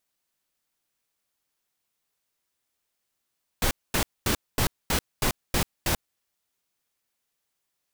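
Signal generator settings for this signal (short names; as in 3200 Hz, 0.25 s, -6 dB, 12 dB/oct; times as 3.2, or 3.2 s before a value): noise bursts pink, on 0.09 s, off 0.23 s, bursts 8, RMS -23.5 dBFS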